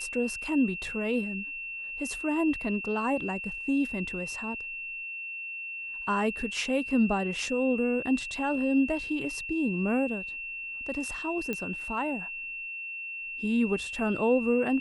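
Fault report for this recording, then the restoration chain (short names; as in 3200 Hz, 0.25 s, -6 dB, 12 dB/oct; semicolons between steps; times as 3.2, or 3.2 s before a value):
tone 2700 Hz -35 dBFS
11.53 pop -18 dBFS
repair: de-click; notch 2700 Hz, Q 30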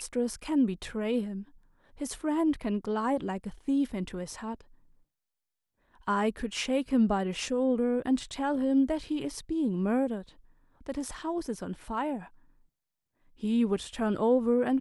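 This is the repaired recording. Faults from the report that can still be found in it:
none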